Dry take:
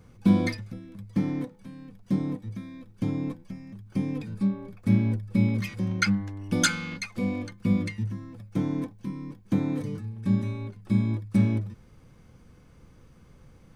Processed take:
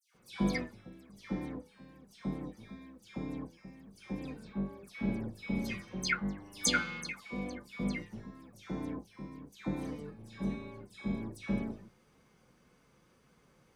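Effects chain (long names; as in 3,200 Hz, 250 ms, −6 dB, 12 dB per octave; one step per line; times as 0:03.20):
sub-octave generator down 2 octaves, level 0 dB
high-pass filter 480 Hz 6 dB per octave
all-pass dispersion lows, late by 146 ms, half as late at 2,200 Hz
flanger 1.8 Hz, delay 4.4 ms, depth 1.3 ms, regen −53%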